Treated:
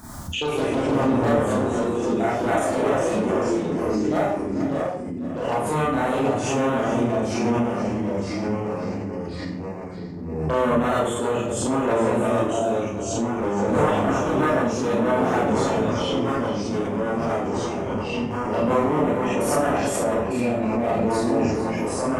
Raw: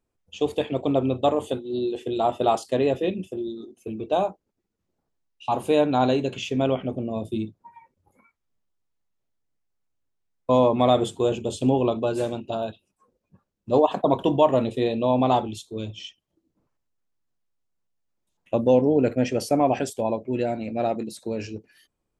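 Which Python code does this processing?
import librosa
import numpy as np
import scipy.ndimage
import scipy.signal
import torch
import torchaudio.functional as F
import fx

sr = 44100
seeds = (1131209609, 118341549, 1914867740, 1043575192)

p1 = np.minimum(x, 2.0 * 10.0 ** (-19.5 / 20.0) - x)
p2 = scipy.signal.sosfilt(scipy.signal.butter(2, 46.0, 'highpass', fs=sr, output='sos'), p1)
p3 = fx.over_compress(p2, sr, threshold_db=-32.0, ratio=-1.0)
p4 = p2 + F.gain(torch.from_numpy(p3), -2.0).numpy()
p5 = fx.env_phaser(p4, sr, low_hz=470.0, high_hz=4800.0, full_db=-20.0)
p6 = p5 + fx.echo_single(p5, sr, ms=441, db=-11.5, dry=0)
p7 = fx.echo_pitch(p6, sr, ms=87, semitones=-2, count=3, db_per_echo=-3.0)
p8 = fx.rev_schroeder(p7, sr, rt60_s=0.5, comb_ms=26, drr_db=-7.0)
p9 = fx.pre_swell(p8, sr, db_per_s=36.0)
y = F.gain(torch.from_numpy(p9), -8.0).numpy()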